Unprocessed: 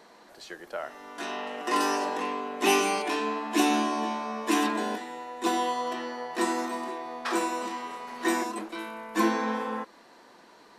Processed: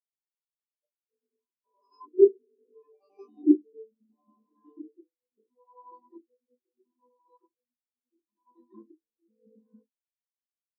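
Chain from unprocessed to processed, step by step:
slices reordered back to front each 91 ms, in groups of 6
auto-filter low-pass square 0.73 Hz 390–4,700 Hz
rectangular room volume 150 cubic metres, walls furnished, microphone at 1.2 metres
every bin expanded away from the loudest bin 4 to 1

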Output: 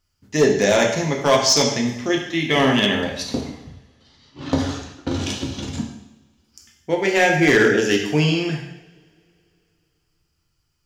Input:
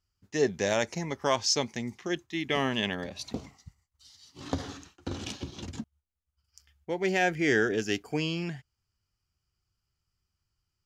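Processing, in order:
0:03.41–0:05.14: low-pass that shuts in the quiet parts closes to 1,900 Hz, open at −31.5 dBFS
coupled-rooms reverb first 0.78 s, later 3 s, from −27 dB, DRR 0 dB
gain into a clipping stage and back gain 17 dB
level +8.5 dB

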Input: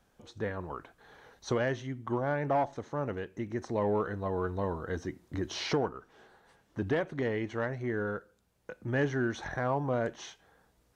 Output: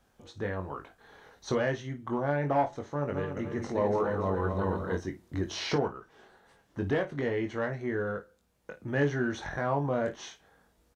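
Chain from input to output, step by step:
0:02.95–0:04.95: feedback delay that plays each chunk backwards 144 ms, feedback 62%, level −5 dB
ambience of single reflections 21 ms −5.5 dB, 54 ms −14.5 dB

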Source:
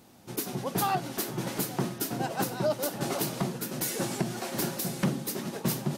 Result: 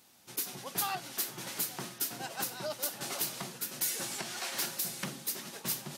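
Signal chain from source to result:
0:04.18–0:04.66: mid-hump overdrive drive 10 dB, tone 5,400 Hz, clips at −17 dBFS
tilt shelving filter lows −8 dB
level −7.5 dB

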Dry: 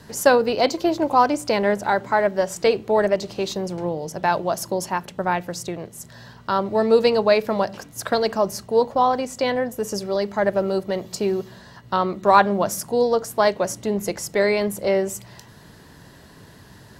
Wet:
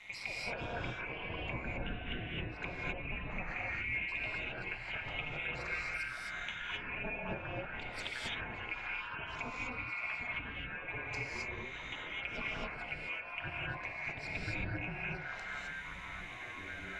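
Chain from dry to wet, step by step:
neighbouring bands swapped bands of 2,000 Hz
Chebyshev band-stop filter 230–510 Hz, order 2
treble cut that deepens with the level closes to 600 Hz, closed at −18.5 dBFS
low-pass filter 3,100 Hz 6 dB per octave
high-shelf EQ 2,400 Hz −10 dB
downward compressor, threshold −41 dBFS, peak gain reduction 12 dB
amplitude modulation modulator 210 Hz, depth 80%
delay with pitch and tempo change per echo 383 ms, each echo −7 semitones, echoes 3, each echo −6 dB
reverb whose tail is shaped and stops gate 290 ms rising, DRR −4 dB
level +4 dB

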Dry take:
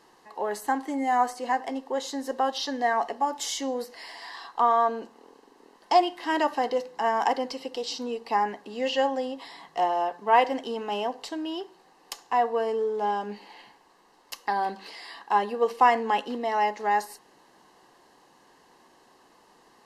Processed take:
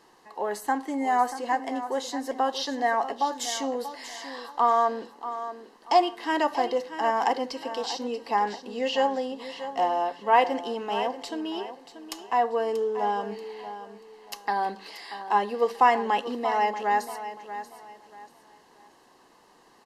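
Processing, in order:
repeating echo 635 ms, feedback 29%, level −12 dB

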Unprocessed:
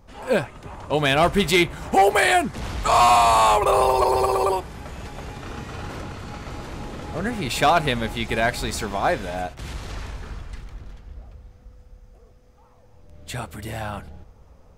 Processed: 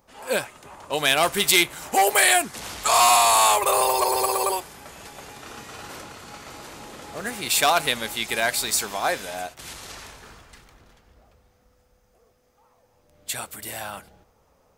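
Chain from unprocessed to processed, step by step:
RIAA equalisation recording
one half of a high-frequency compander decoder only
level −2 dB

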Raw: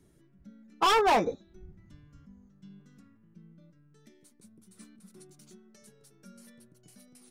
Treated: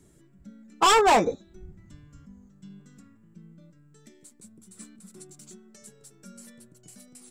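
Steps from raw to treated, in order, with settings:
parametric band 7,600 Hz +13 dB 0.27 octaves
level +4.5 dB

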